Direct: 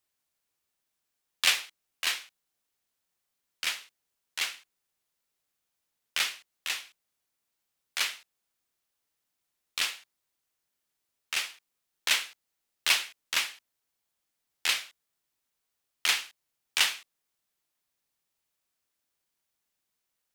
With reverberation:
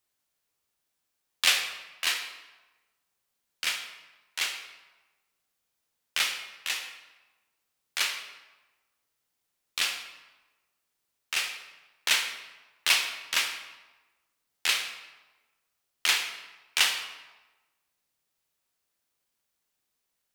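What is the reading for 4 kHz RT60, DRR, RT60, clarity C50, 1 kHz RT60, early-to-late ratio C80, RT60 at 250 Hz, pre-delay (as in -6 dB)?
0.85 s, 5.0 dB, 1.2 s, 7.0 dB, 1.2 s, 9.0 dB, 1.1 s, 17 ms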